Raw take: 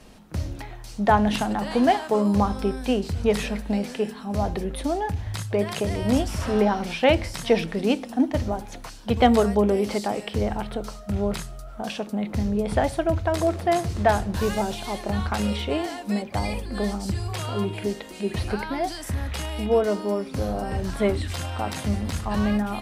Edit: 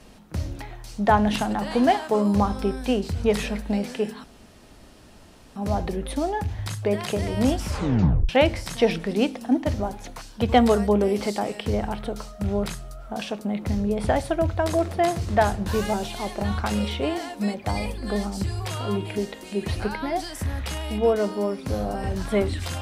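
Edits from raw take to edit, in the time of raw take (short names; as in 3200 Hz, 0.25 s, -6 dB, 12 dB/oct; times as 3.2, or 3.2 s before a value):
4.24 insert room tone 1.32 s
6.36 tape stop 0.61 s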